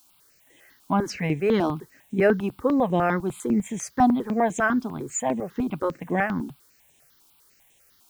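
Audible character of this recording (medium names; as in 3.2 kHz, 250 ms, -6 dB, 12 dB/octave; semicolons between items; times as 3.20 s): a quantiser's noise floor 10-bit, dither triangular; notches that jump at a steady rate 10 Hz 510–4700 Hz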